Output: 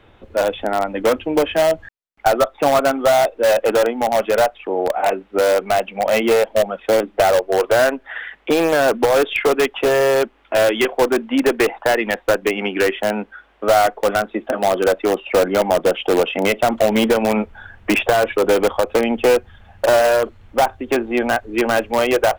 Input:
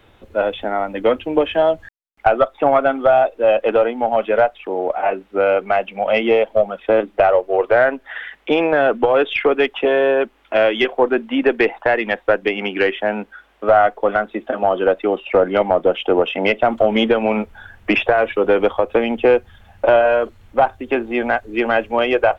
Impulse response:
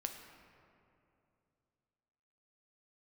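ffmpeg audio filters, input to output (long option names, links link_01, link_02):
-filter_complex "[0:a]lowpass=frequency=3400:poles=1,asplit=2[link_01][link_02];[link_02]aeval=exprs='(mod(3.35*val(0)+1,2)-1)/3.35':channel_layout=same,volume=-9dB[link_03];[link_01][link_03]amix=inputs=2:normalize=0,volume=-1dB"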